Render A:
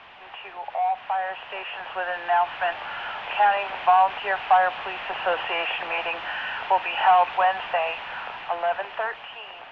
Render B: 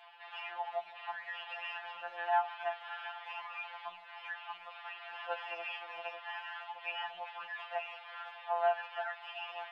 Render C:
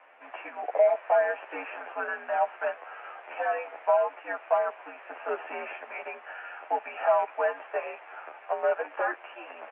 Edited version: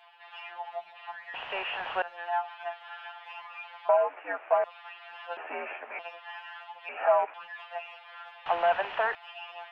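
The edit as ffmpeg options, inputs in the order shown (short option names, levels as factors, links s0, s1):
-filter_complex "[0:a]asplit=2[s0][s1];[2:a]asplit=3[s2][s3][s4];[1:a]asplit=6[s5][s6][s7][s8][s9][s10];[s5]atrim=end=1.342[s11];[s0]atrim=start=1.338:end=2.022[s12];[s6]atrim=start=2.018:end=3.892[s13];[s2]atrim=start=3.888:end=4.642[s14];[s7]atrim=start=4.638:end=5.372[s15];[s3]atrim=start=5.368:end=5.992[s16];[s8]atrim=start=5.988:end=6.892[s17];[s4]atrim=start=6.888:end=7.342[s18];[s9]atrim=start=7.338:end=8.462[s19];[s1]atrim=start=8.458:end=9.152[s20];[s10]atrim=start=9.148[s21];[s11][s12]acrossfade=d=0.004:c1=hsin:c2=hsin[s22];[s22][s13]acrossfade=d=0.004:c1=hsin:c2=hsin[s23];[s23][s14]acrossfade=d=0.004:c1=hsin:c2=hsin[s24];[s24][s15]acrossfade=d=0.004:c1=hsin:c2=hsin[s25];[s25][s16]acrossfade=d=0.004:c1=hsin:c2=hsin[s26];[s26][s17]acrossfade=d=0.004:c1=hsin:c2=hsin[s27];[s27][s18]acrossfade=d=0.004:c1=hsin:c2=hsin[s28];[s28][s19]acrossfade=d=0.004:c1=hsin:c2=hsin[s29];[s29][s20]acrossfade=d=0.004:c1=hsin:c2=hsin[s30];[s30][s21]acrossfade=d=0.004:c1=hsin:c2=hsin"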